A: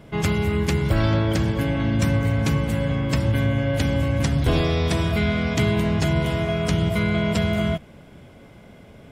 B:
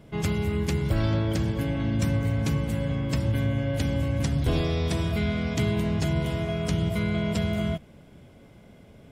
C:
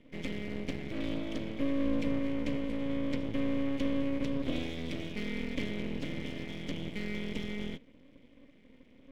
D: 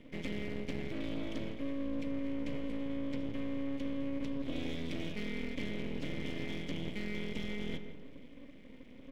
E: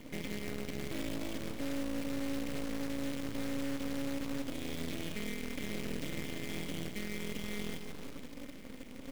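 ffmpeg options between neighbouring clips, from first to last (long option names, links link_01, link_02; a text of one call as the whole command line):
ffmpeg -i in.wav -af "equalizer=frequency=1400:width_type=o:width=2.5:gain=-4,volume=-4dB" out.wav
ffmpeg -i in.wav -filter_complex "[0:a]asplit=3[link_01][link_02][link_03];[link_01]bandpass=frequency=270:width_type=q:width=8,volume=0dB[link_04];[link_02]bandpass=frequency=2290:width_type=q:width=8,volume=-6dB[link_05];[link_03]bandpass=frequency=3010:width_type=q:width=8,volume=-9dB[link_06];[link_04][link_05][link_06]amix=inputs=3:normalize=0,aeval=exprs='max(val(0),0)':channel_layout=same,volume=8dB" out.wav
ffmpeg -i in.wav -filter_complex "[0:a]asplit=2[link_01][link_02];[link_02]adelay=166,lowpass=frequency=2200:poles=1,volume=-13dB,asplit=2[link_03][link_04];[link_04]adelay=166,lowpass=frequency=2200:poles=1,volume=0.49,asplit=2[link_05][link_06];[link_06]adelay=166,lowpass=frequency=2200:poles=1,volume=0.49,asplit=2[link_07][link_08];[link_08]adelay=166,lowpass=frequency=2200:poles=1,volume=0.49,asplit=2[link_09][link_10];[link_10]adelay=166,lowpass=frequency=2200:poles=1,volume=0.49[link_11];[link_01][link_03][link_05][link_07][link_09][link_11]amix=inputs=6:normalize=0,areverse,acompressor=threshold=-37dB:ratio=6,areverse,volume=4.5dB" out.wav
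ffmpeg -i in.wav -af "alimiter=level_in=8.5dB:limit=-24dB:level=0:latency=1:release=341,volume=-8.5dB,acrusher=bits=2:mode=log:mix=0:aa=0.000001,volume=4.5dB" out.wav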